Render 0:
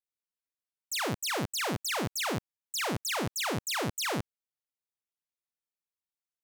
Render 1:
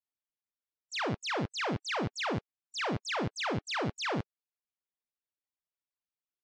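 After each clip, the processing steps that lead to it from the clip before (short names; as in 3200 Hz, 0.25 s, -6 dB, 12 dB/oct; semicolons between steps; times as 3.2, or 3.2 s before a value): median-filter separation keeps percussive; Bessel low-pass 4000 Hz, order 6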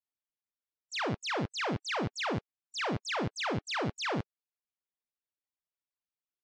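nothing audible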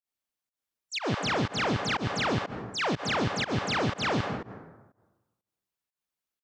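plate-style reverb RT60 1.2 s, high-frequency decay 0.5×, pre-delay 0.115 s, DRR 5.5 dB; pump 122 bpm, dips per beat 1, -23 dB, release 0.135 s; gain +4.5 dB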